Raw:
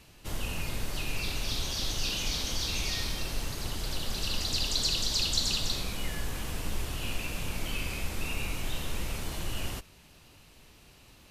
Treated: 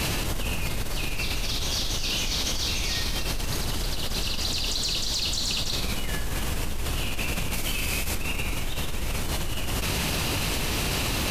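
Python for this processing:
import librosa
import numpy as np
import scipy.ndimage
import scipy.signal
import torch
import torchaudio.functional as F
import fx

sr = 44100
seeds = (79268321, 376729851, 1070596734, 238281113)

y = fx.high_shelf(x, sr, hz=4200.0, db=7.0, at=(7.53, 8.15))
y = 10.0 ** (-19.5 / 20.0) * np.tanh(y / 10.0 ** (-19.5 / 20.0))
y = fx.env_flatten(y, sr, amount_pct=100)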